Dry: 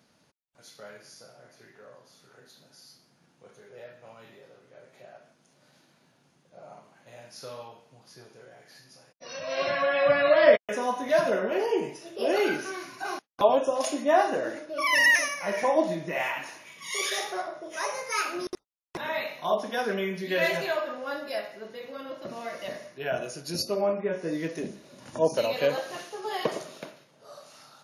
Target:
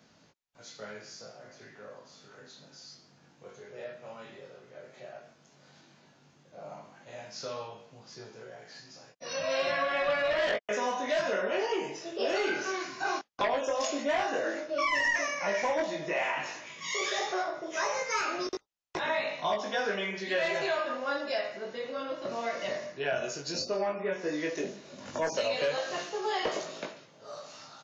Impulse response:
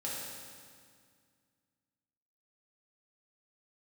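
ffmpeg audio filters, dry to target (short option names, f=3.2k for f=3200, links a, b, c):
-filter_complex "[0:a]aresample=16000,aeval=exprs='0.531*sin(PI/2*3.16*val(0)/0.531)':c=same,aresample=44100,flanger=delay=18.5:depth=3:speed=0.11,acrossover=split=340|1400[a][b][c];[a]acompressor=threshold=-39dB:ratio=4[d];[b]acompressor=threshold=-22dB:ratio=4[e];[c]acompressor=threshold=-26dB:ratio=4[f];[d][e][f]amix=inputs=3:normalize=0,volume=-7.5dB"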